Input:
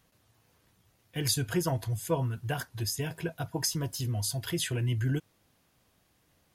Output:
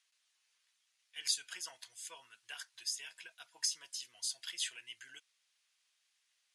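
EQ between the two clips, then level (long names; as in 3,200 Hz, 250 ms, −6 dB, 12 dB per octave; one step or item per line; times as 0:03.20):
flat-topped band-pass 5,500 Hz, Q 0.57
low-pass filter 9,600 Hz 24 dB per octave
−3.0 dB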